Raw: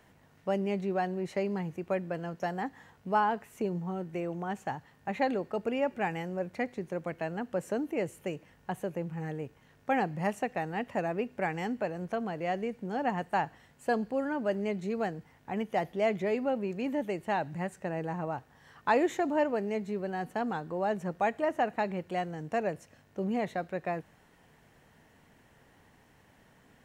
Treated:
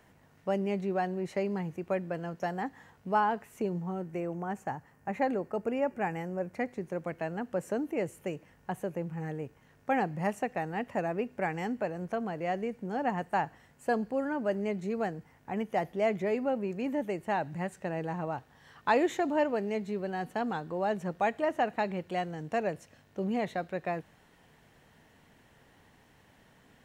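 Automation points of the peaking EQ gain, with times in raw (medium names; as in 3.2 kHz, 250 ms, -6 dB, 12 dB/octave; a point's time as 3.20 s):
peaking EQ 3.6 kHz 0.82 oct
3.70 s -2 dB
4.49 s -12 dB
6.13 s -12 dB
6.98 s -4 dB
17.30 s -4 dB
17.80 s +3 dB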